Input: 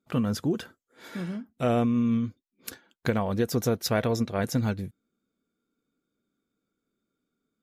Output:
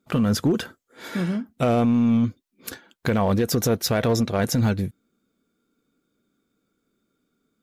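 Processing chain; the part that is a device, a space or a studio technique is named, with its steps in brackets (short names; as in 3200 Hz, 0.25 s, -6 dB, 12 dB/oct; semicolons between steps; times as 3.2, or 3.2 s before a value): limiter into clipper (limiter -20.5 dBFS, peak gain reduction 7.5 dB; hard clip -22.5 dBFS, distortion -24 dB); gain +8.5 dB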